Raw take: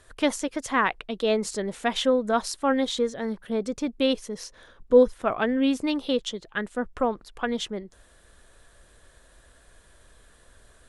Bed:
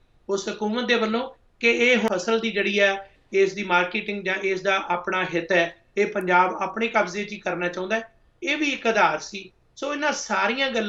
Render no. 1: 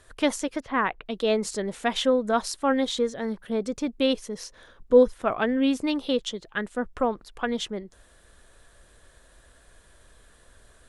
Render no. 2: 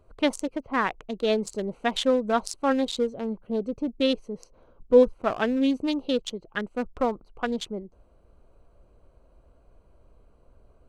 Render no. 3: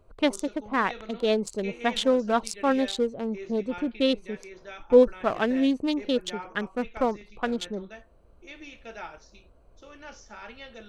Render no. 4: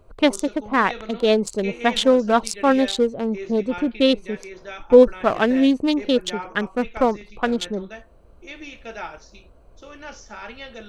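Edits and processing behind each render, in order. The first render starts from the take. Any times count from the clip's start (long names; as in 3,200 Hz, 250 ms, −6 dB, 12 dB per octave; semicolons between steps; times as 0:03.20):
0:00.60–0:01.06: high-frequency loss of the air 350 metres
adaptive Wiener filter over 25 samples; dynamic equaliser 7,100 Hz, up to +4 dB, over −49 dBFS, Q 0.76
mix in bed −21 dB
level +6.5 dB; brickwall limiter −2 dBFS, peak gain reduction 2 dB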